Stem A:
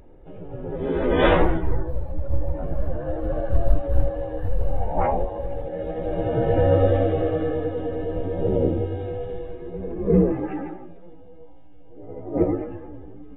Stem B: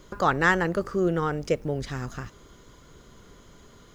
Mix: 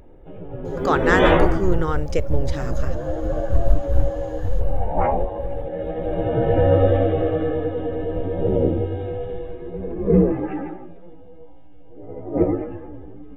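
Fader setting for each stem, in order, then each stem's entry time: +2.0, +1.5 dB; 0.00, 0.65 s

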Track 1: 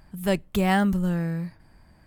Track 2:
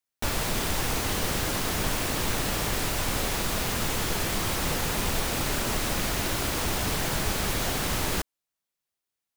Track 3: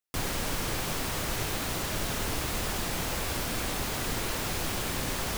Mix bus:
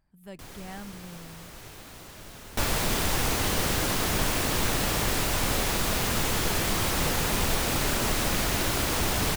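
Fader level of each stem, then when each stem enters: -20.0, +1.5, -13.5 dB; 0.00, 2.35, 0.25 s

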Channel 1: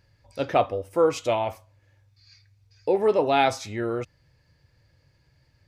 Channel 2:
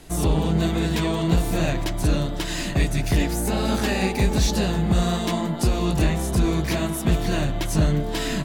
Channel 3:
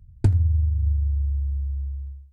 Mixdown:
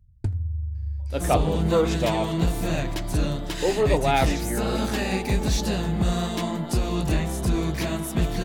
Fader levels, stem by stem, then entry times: -1.5, -3.0, -8.0 dB; 0.75, 1.10, 0.00 s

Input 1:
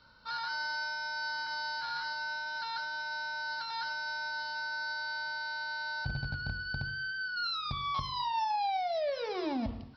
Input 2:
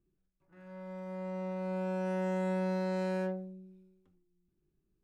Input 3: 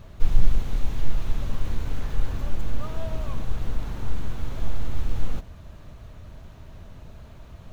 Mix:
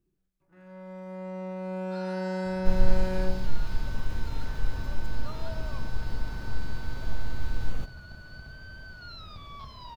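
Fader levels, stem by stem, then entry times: -11.5, +1.5, -4.0 dB; 1.65, 0.00, 2.45 s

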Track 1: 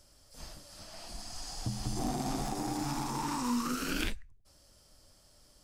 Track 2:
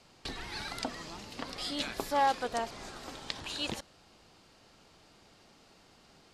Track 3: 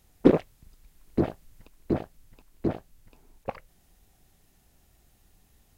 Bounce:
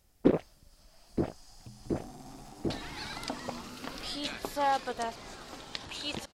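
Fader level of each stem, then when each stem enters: -14.0, -1.0, -6.0 dB; 0.00, 2.45, 0.00 s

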